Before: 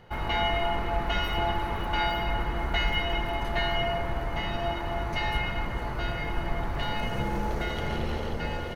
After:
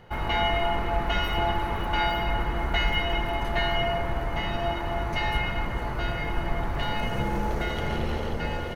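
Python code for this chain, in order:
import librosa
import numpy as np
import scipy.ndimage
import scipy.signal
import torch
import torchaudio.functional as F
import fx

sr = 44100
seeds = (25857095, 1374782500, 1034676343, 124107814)

y = fx.peak_eq(x, sr, hz=4400.0, db=-2.0, octaves=0.77)
y = F.gain(torch.from_numpy(y), 2.0).numpy()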